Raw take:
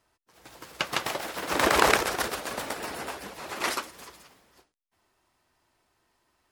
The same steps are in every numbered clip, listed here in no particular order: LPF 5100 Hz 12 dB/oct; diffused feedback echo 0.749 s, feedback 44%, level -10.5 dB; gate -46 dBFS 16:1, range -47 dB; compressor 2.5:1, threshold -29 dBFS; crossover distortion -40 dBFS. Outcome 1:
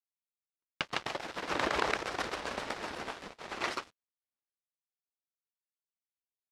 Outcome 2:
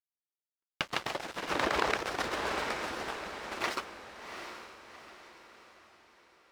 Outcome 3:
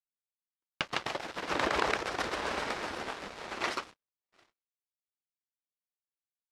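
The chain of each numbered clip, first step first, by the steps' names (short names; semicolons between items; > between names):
compressor > diffused feedback echo > crossover distortion > gate > LPF; LPF > crossover distortion > gate > diffused feedback echo > compressor; diffused feedback echo > crossover distortion > LPF > gate > compressor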